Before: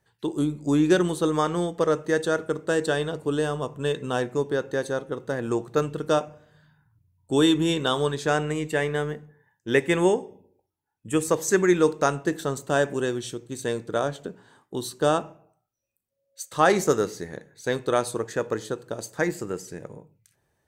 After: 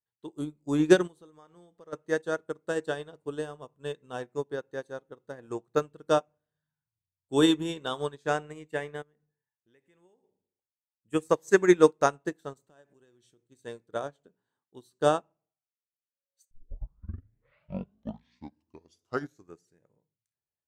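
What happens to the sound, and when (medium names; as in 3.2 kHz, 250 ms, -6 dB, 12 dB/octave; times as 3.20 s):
1.07–1.93 s: compression 4:1, threshold -29 dBFS
9.02–10.24 s: compression 2.5:1, threshold -40 dBFS
12.53–13.46 s: compression, threshold -30 dBFS
16.51 s: tape start 3.28 s
whole clip: dynamic bell 780 Hz, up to +3 dB, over -33 dBFS, Q 0.79; upward expansion 2.5:1, over -34 dBFS; trim +1.5 dB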